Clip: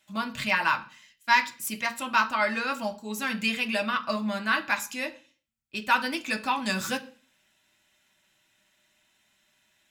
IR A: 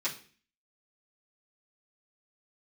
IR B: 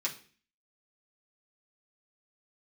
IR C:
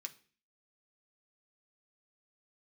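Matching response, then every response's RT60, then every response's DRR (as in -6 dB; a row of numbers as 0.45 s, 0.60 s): C; 0.45 s, 0.45 s, 0.45 s; -11.0 dB, -5.0 dB, 4.0 dB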